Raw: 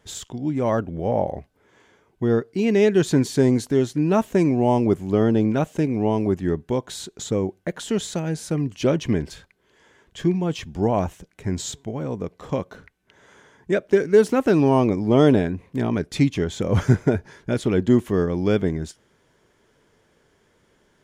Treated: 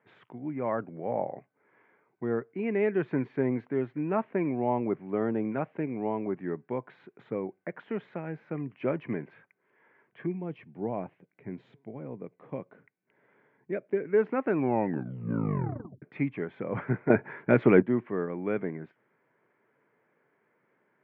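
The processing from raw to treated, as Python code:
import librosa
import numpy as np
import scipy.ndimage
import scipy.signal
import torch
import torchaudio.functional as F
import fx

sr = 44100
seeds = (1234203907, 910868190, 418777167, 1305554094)

y = fx.peak_eq(x, sr, hz=1300.0, db=-9.0, octaves=1.9, at=(10.26, 14.05))
y = fx.edit(y, sr, fx.tape_stop(start_s=14.56, length_s=1.46),
    fx.clip_gain(start_s=17.1, length_s=0.72, db=11.5), tone=tone)
y = scipy.signal.sosfilt(scipy.signal.cheby1(4, 1.0, [120.0, 2300.0], 'bandpass', fs=sr, output='sos'), y)
y = fx.low_shelf(y, sr, hz=310.0, db=-8.5)
y = y * 10.0 ** (-5.5 / 20.0)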